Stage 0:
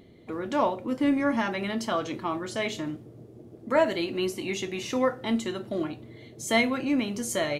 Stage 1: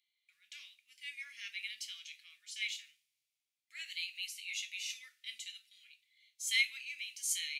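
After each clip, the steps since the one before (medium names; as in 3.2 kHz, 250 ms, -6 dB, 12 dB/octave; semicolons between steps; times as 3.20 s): elliptic high-pass 2.3 kHz, stop band 60 dB; harmonic-percussive split percussive -5 dB; three bands expanded up and down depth 40%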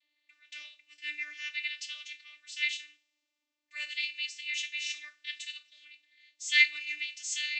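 vocoder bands 32, saw 297 Hz; trim +8 dB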